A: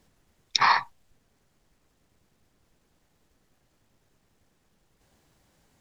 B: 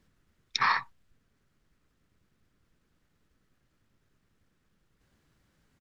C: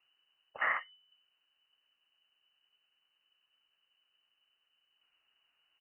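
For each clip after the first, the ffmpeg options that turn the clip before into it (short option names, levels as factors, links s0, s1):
-af "firequalizer=gain_entry='entry(170,0);entry(790,-9);entry(1300,1);entry(2200,-2);entry(6900,-7)':delay=0.05:min_phase=1,volume=0.75"
-af "lowpass=f=2600:t=q:w=0.5098,lowpass=f=2600:t=q:w=0.6013,lowpass=f=2600:t=q:w=0.9,lowpass=f=2600:t=q:w=2.563,afreqshift=-3000,volume=0.501"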